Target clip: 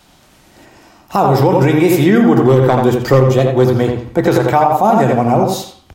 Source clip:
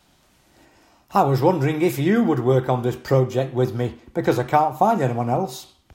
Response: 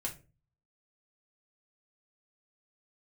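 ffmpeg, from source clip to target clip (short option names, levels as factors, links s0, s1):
-filter_complex "[0:a]asettb=1/sr,asplit=3[s0][s1][s2];[s0]atrim=end=2.374[s3];[s1]atrim=start=2.37:end=4.28,asetpts=PTS-STARTPTS,afade=t=in:d=0.004:c=qsin,afade=t=out:st=1.906:d=0.004:c=qsin,asoftclip=type=hard:threshold=0.266[s4];[s2]atrim=start=4.276[s5];[s3][s4]acrossfade=d=0.004:c1=hsin:c2=qsin[s6];[s6][s5]acrossfade=d=0.004:c1=qsin:c2=hsin,bandreject=f=60:t=h:w=6,bandreject=f=120:t=h:w=6,asplit=2[s7][s8];[s8]adelay=84,lowpass=f=2700:p=1,volume=0.596,asplit=2[s9][s10];[s10]adelay=84,lowpass=f=2700:p=1,volume=0.28,asplit=2[s11][s12];[s12]adelay=84,lowpass=f=2700:p=1,volume=0.28,asplit=2[s13][s14];[s14]adelay=84,lowpass=f=2700:p=1,volume=0.28[s15];[s7][s9][s11][s13][s15]amix=inputs=5:normalize=0,alimiter=level_in=3.55:limit=0.891:release=50:level=0:latency=1,volume=0.891"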